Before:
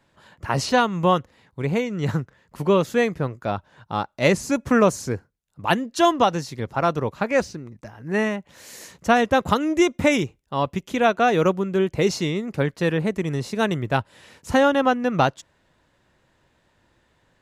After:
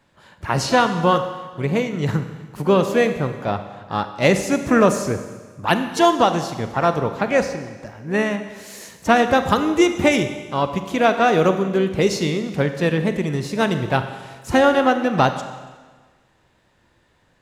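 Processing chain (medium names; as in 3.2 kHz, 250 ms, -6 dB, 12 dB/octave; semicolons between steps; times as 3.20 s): harmony voices +5 st -15 dB; Schroeder reverb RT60 1.4 s, combs from 31 ms, DRR 8.5 dB; trim +2 dB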